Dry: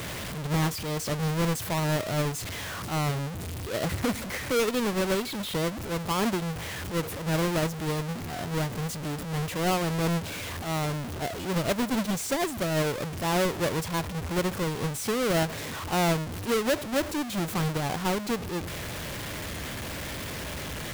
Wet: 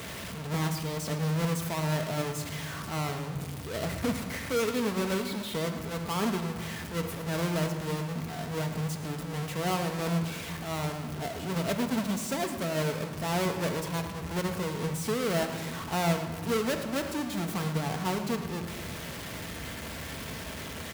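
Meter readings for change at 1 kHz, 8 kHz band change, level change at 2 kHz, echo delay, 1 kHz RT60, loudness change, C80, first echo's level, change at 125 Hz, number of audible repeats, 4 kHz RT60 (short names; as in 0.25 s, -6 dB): -3.0 dB, -3.5 dB, -3.5 dB, 0.11 s, 1.8 s, -3.0 dB, 8.5 dB, -14.0 dB, -2.0 dB, 1, 1.1 s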